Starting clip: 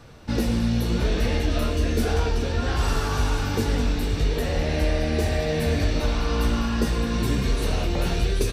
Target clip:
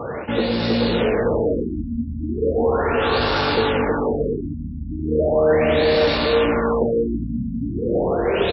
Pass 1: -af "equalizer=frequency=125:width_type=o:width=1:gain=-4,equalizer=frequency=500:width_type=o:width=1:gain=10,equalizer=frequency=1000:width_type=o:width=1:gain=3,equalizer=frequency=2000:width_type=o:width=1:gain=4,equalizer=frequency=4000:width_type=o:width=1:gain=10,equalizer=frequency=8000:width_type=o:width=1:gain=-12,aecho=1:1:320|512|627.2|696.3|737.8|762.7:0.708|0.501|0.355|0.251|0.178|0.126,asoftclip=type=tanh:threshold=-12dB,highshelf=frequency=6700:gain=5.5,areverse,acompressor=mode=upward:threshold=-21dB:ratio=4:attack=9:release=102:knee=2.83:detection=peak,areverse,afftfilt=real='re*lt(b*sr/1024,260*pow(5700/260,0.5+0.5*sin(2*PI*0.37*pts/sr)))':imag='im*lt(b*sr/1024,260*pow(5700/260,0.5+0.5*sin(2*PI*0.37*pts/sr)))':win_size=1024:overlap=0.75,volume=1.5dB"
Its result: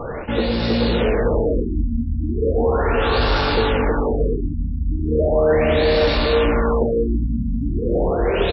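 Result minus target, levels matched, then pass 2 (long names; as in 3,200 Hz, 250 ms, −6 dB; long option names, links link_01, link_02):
125 Hz band +4.0 dB
-af "equalizer=frequency=125:width_type=o:width=1:gain=-4,equalizer=frequency=500:width_type=o:width=1:gain=10,equalizer=frequency=1000:width_type=o:width=1:gain=3,equalizer=frequency=2000:width_type=o:width=1:gain=4,equalizer=frequency=4000:width_type=o:width=1:gain=10,equalizer=frequency=8000:width_type=o:width=1:gain=-12,aecho=1:1:320|512|627.2|696.3|737.8|762.7:0.708|0.501|0.355|0.251|0.178|0.126,asoftclip=type=tanh:threshold=-12dB,highpass=98,highshelf=frequency=6700:gain=5.5,areverse,acompressor=mode=upward:threshold=-21dB:ratio=4:attack=9:release=102:knee=2.83:detection=peak,areverse,afftfilt=real='re*lt(b*sr/1024,260*pow(5700/260,0.5+0.5*sin(2*PI*0.37*pts/sr)))':imag='im*lt(b*sr/1024,260*pow(5700/260,0.5+0.5*sin(2*PI*0.37*pts/sr)))':win_size=1024:overlap=0.75,volume=1.5dB"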